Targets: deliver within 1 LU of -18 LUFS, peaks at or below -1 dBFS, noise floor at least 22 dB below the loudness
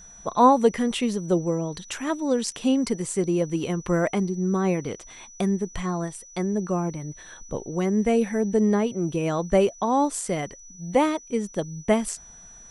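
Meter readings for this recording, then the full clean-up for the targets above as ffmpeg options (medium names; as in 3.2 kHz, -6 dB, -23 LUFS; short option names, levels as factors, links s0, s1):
steady tone 5.9 kHz; tone level -45 dBFS; loudness -24.5 LUFS; peak level -5.0 dBFS; loudness target -18.0 LUFS
-> -af "bandreject=f=5900:w=30"
-af "volume=2.11,alimiter=limit=0.891:level=0:latency=1"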